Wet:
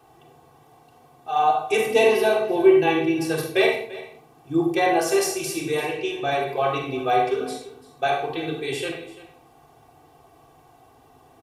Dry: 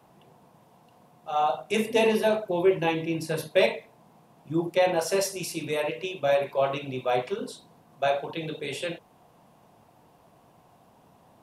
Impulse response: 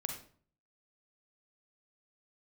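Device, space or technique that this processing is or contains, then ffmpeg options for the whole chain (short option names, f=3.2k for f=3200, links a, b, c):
microphone above a desk: -filter_complex "[0:a]asettb=1/sr,asplit=3[a][b][c];[a]atrim=end=5.904[d];[b]atrim=start=5.9:end=6.39,asetpts=PTS-STARTPTS,afade=t=in:d=0.004:c=qsin,afade=t=out:st=0.486:d=0.004:c=qsin,lowpass=8.9k[e];[c]atrim=start=6.386[f];[d][e]acrossfade=d=0.004:c1=hsin:c2=qsin[g];[g][f]acrossfade=d=0.004:c1=qsin:c2=hsin,aecho=1:1:2.6:0.87,aecho=1:1:341:0.126[h];[1:a]atrim=start_sample=2205[i];[h][i]afir=irnorm=-1:irlink=0,volume=2dB"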